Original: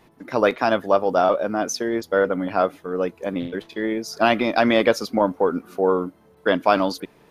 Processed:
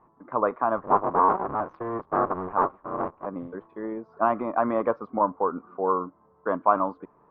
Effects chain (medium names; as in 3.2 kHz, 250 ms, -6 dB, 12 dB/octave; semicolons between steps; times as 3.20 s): 0.77–3.26 s: cycle switcher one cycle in 3, inverted; four-pole ladder low-pass 1.2 kHz, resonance 70%; trim +2.5 dB